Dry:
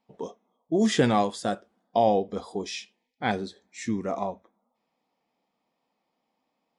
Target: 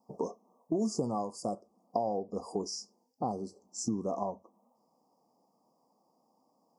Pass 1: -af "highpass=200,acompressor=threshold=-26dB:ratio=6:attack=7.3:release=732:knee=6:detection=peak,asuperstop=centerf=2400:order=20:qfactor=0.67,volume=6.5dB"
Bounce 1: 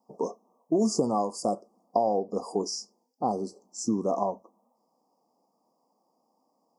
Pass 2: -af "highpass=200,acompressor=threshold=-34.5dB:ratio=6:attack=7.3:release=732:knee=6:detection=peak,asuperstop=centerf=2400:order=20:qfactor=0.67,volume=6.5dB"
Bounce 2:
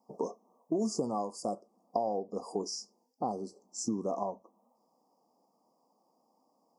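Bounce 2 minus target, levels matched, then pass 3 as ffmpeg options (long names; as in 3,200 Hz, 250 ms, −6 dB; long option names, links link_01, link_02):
125 Hz band −3.5 dB
-af "highpass=95,acompressor=threshold=-34.5dB:ratio=6:attack=7.3:release=732:knee=6:detection=peak,asuperstop=centerf=2400:order=20:qfactor=0.67,volume=6.5dB"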